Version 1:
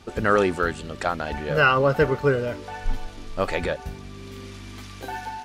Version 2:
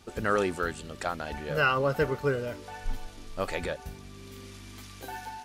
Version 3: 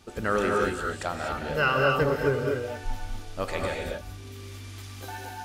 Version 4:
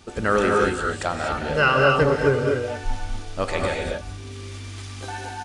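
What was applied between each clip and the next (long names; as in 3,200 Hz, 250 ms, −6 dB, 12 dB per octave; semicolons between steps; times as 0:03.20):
high-shelf EQ 7,300 Hz +11 dB; level −7 dB
reverb whose tail is shaped and stops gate 270 ms rising, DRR 0.5 dB
downsampling to 22,050 Hz; level +5.5 dB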